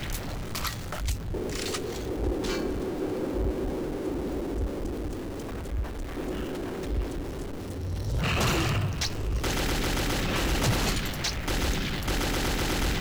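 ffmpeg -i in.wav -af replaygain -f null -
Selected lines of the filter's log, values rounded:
track_gain = +11.2 dB
track_peak = 0.087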